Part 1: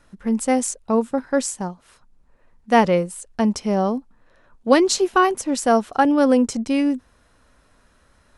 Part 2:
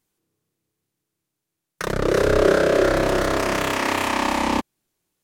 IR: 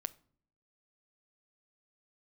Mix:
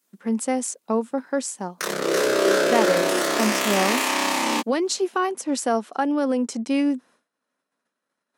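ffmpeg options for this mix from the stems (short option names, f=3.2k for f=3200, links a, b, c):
-filter_complex "[0:a]agate=range=-33dB:threshold=-44dB:ratio=3:detection=peak,alimiter=limit=-11.5dB:level=0:latency=1:release=297,volume=-1.5dB[a];[1:a]highshelf=f=2.9k:g=10.5,flanger=delay=15.5:depth=4.5:speed=0.83,volume=0dB[b];[a][b]amix=inputs=2:normalize=0,highpass=f=200:w=0.5412,highpass=f=200:w=1.3066"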